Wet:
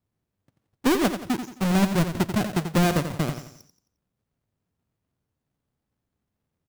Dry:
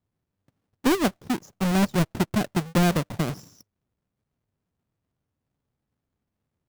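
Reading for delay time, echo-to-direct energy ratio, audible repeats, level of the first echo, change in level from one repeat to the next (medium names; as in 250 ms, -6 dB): 88 ms, -8.5 dB, 4, -9.0 dB, -8.0 dB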